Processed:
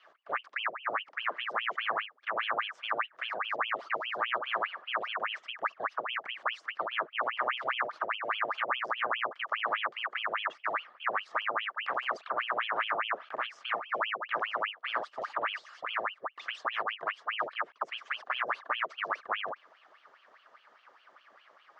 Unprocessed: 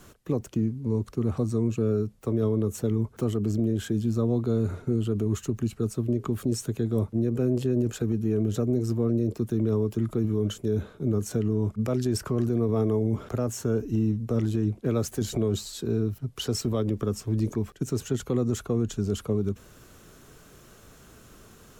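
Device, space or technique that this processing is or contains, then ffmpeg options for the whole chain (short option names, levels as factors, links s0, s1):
voice changer toy: -af "aeval=exprs='val(0)*sin(2*PI*1600*n/s+1600*0.85/4.9*sin(2*PI*4.9*n/s))':c=same,highpass=530,equalizer=f=630:t=q:w=4:g=5,equalizer=f=1200:t=q:w=4:g=10,equalizer=f=1700:t=q:w=4:g=4,equalizer=f=2500:t=q:w=4:g=-6,equalizer=f=3900:t=q:w=4:g=-6,lowpass=f=4200:w=0.5412,lowpass=f=4200:w=1.3066,volume=0.473"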